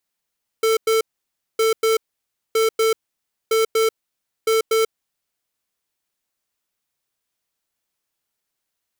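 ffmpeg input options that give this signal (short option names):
-f lavfi -i "aevalsrc='0.141*(2*lt(mod(445*t,1),0.5)-1)*clip(min(mod(mod(t,0.96),0.24),0.14-mod(mod(t,0.96),0.24))/0.005,0,1)*lt(mod(t,0.96),0.48)':d=4.8:s=44100"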